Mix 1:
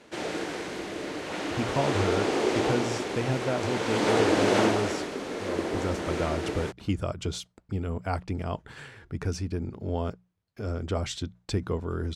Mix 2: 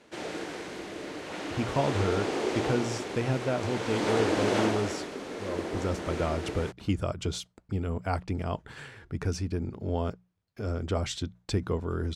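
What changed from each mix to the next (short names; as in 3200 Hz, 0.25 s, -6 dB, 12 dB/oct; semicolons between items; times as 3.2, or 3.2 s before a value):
background -4.0 dB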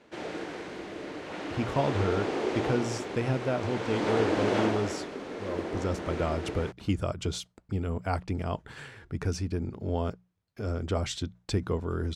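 background: add LPF 3300 Hz 6 dB/oct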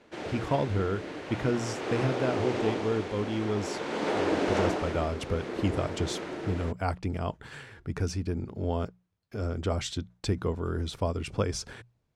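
speech: entry -1.25 s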